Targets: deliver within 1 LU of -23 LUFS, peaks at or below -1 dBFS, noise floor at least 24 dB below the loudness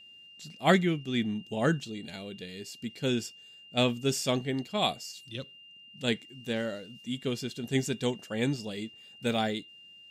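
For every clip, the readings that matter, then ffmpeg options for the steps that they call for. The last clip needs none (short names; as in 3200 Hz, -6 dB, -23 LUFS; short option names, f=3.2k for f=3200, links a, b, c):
steady tone 2800 Hz; tone level -50 dBFS; loudness -31.5 LUFS; peak -10.0 dBFS; loudness target -23.0 LUFS
-> -af "bandreject=f=2.8k:w=30"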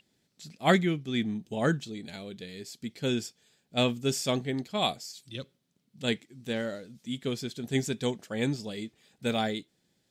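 steady tone none; loudness -31.0 LUFS; peak -9.5 dBFS; loudness target -23.0 LUFS
-> -af "volume=8dB"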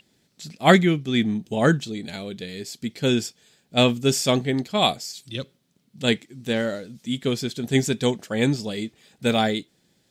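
loudness -23.0 LUFS; peak -1.5 dBFS; noise floor -66 dBFS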